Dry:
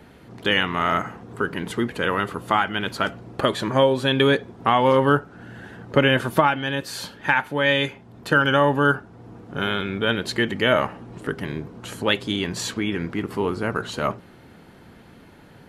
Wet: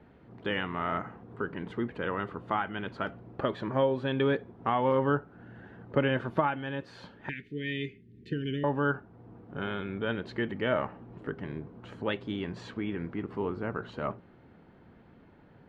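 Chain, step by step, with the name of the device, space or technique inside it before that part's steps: 7.29–8.64 Chebyshev band-stop 430–1900 Hz, order 4; phone in a pocket (LPF 3500 Hz 12 dB/oct; high shelf 2200 Hz -9.5 dB); gain -8 dB

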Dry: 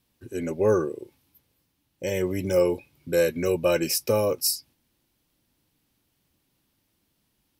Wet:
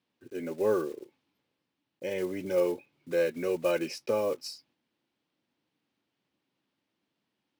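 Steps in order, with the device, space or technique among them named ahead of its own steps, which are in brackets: early digital voice recorder (BPF 210–3600 Hz; block floating point 5-bit); gain -5 dB

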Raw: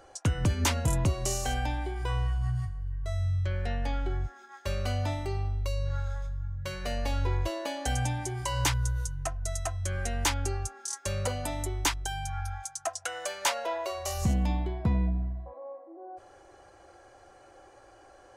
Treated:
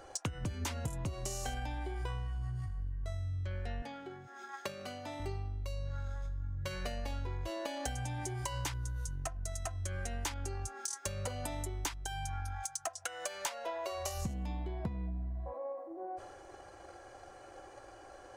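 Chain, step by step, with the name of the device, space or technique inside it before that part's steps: drum-bus smash (transient shaper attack +8 dB, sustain +4 dB; compressor 6:1, threshold -36 dBFS, peak gain reduction 19.5 dB; soft clip -25.5 dBFS, distortion -25 dB); 3.82–5.2 HPF 150 Hz 24 dB/oct; gain +1 dB

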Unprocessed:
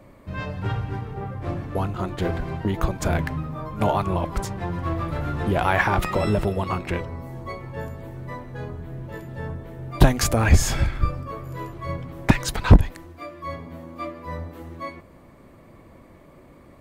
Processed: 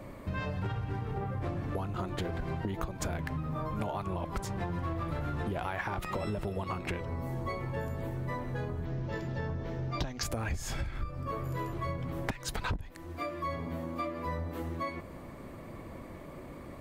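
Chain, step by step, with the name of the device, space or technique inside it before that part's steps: 8.85–10.23 resonant high shelf 7500 Hz -11.5 dB, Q 3; serial compression, peaks first (compressor 6:1, threshold -30 dBFS, peak gain reduction 22 dB; compressor 2:1, threshold -38 dBFS, peak gain reduction 8 dB); gain +3.5 dB

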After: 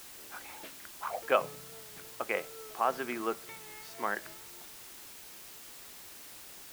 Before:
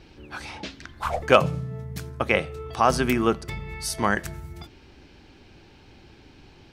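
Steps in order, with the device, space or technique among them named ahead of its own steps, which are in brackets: wax cylinder (BPF 390–2500 Hz; wow and flutter; white noise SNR 11 dB); gain -9 dB

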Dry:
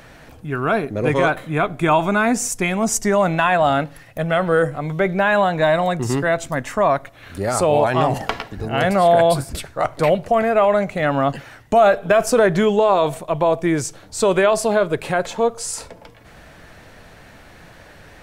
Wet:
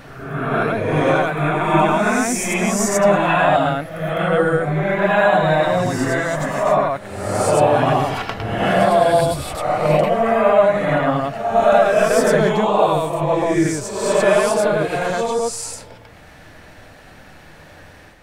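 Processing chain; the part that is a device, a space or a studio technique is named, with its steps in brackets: reverse reverb (reverse; reverb RT60 1.1 s, pre-delay 78 ms, DRR -5 dB; reverse); gain -5 dB

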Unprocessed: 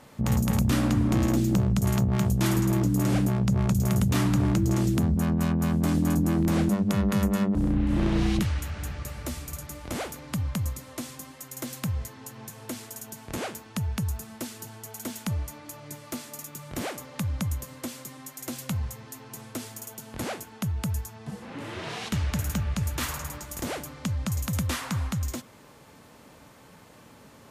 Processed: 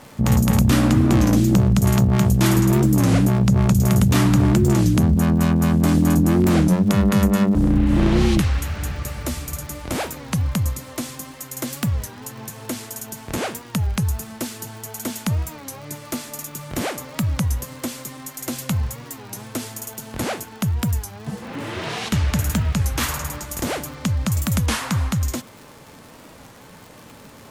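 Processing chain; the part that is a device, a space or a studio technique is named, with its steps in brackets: warped LP (record warp 33 1/3 rpm, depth 160 cents; crackle 110/s -41 dBFS; pink noise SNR 41 dB); gain +7.5 dB

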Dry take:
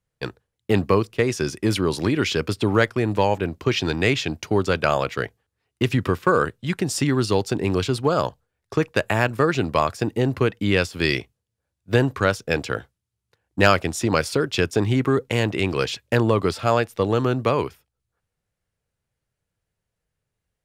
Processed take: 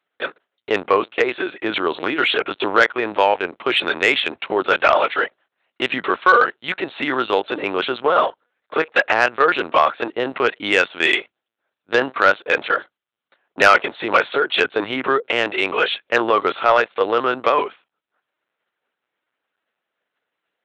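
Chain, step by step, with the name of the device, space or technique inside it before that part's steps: talking toy (LPC vocoder at 8 kHz pitch kept; HPF 570 Hz 12 dB/oct; bell 1400 Hz +4 dB 0.26 oct; soft clip -11 dBFS, distortion -17 dB); gain +8.5 dB

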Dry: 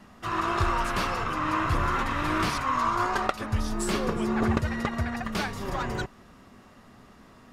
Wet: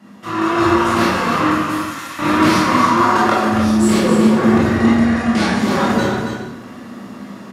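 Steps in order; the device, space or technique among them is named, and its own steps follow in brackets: 1.5–2.19 pre-emphasis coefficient 0.97; 4.76–5.6 steep low-pass 11000 Hz 48 dB/oct; bell 220 Hz +6 dB 1.1 oct; echo 0.277 s -7 dB; far laptop microphone (reverb RT60 0.95 s, pre-delay 18 ms, DRR -6.5 dB; HPF 150 Hz 12 dB/oct; AGC gain up to 7.5 dB)

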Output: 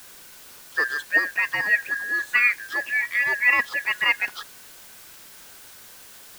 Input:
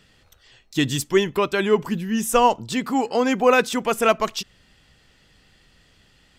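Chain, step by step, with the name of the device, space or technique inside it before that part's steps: split-band scrambled radio (four-band scrambler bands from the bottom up 2143; BPF 350–2900 Hz; white noise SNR 20 dB); gain -2 dB

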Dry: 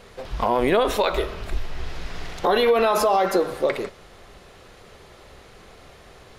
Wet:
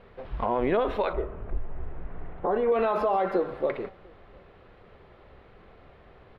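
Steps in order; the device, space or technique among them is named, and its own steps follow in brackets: shout across a valley (air absorption 460 m; outdoor echo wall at 120 m, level -29 dB); 1.13–2.72 Bessel low-pass 1100 Hz, order 2; gain -4 dB

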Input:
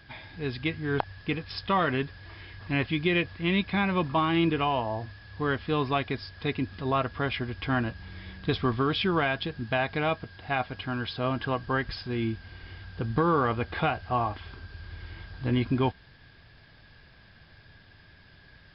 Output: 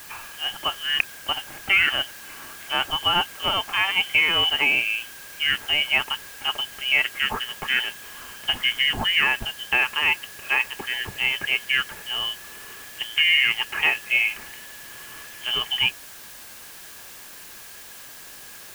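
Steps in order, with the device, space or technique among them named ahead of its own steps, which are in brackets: scrambled radio voice (BPF 350–3200 Hz; inverted band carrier 3300 Hz; white noise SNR 17 dB); gain +7 dB

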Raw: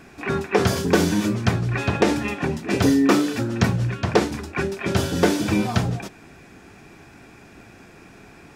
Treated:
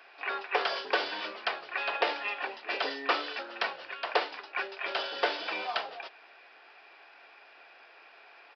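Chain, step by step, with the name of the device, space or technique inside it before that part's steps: musical greeting card (downsampling 11025 Hz; HPF 570 Hz 24 dB/oct; bell 2900 Hz +5.5 dB 0.22 oct); gain -4.5 dB

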